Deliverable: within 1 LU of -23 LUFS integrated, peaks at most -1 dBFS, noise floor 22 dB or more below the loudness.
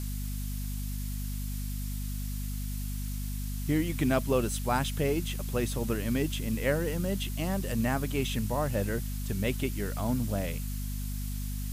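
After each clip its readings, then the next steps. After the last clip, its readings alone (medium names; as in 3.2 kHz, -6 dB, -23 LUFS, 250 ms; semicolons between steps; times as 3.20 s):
hum 50 Hz; highest harmonic 250 Hz; hum level -32 dBFS; noise floor -34 dBFS; noise floor target -54 dBFS; loudness -32.0 LUFS; peak level -13.5 dBFS; loudness target -23.0 LUFS
-> hum notches 50/100/150/200/250 Hz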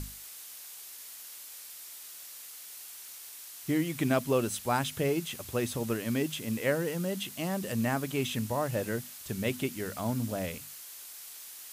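hum not found; noise floor -47 dBFS; noise floor target -56 dBFS
-> noise print and reduce 9 dB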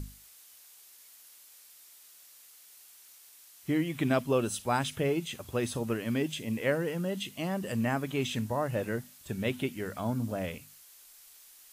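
noise floor -56 dBFS; loudness -32.0 LUFS; peak level -14.0 dBFS; loudness target -23.0 LUFS
-> trim +9 dB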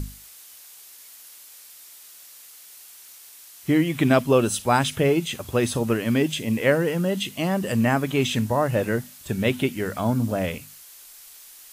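loudness -23.0 LUFS; peak level -5.0 dBFS; noise floor -47 dBFS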